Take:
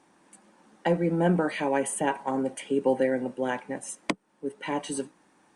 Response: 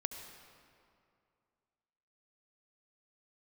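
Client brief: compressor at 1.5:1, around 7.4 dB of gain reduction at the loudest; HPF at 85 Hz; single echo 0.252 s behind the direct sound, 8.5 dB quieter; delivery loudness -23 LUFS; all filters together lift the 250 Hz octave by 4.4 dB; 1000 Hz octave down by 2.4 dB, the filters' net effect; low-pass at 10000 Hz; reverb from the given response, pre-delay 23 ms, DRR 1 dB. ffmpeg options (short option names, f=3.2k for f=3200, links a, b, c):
-filter_complex "[0:a]highpass=85,lowpass=10k,equalizer=f=250:t=o:g=6,equalizer=f=1k:t=o:g=-3.5,acompressor=threshold=-38dB:ratio=1.5,aecho=1:1:252:0.376,asplit=2[a][b];[1:a]atrim=start_sample=2205,adelay=23[c];[b][c]afir=irnorm=-1:irlink=0,volume=-1dB[d];[a][d]amix=inputs=2:normalize=0,volume=6dB"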